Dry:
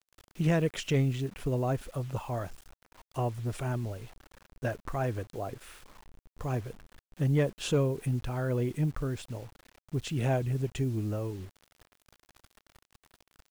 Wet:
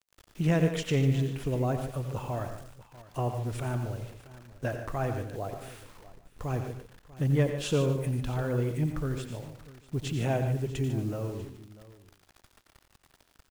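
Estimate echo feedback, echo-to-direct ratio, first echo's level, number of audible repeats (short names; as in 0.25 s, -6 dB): no steady repeat, -6.0 dB, -10.0 dB, 5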